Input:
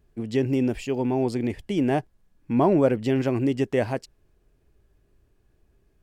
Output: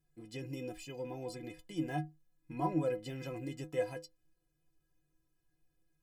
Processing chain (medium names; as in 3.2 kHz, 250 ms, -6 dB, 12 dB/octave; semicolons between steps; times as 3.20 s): treble shelf 5.6 kHz +10 dB; inharmonic resonator 150 Hz, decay 0.28 s, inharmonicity 0.03; trim -2.5 dB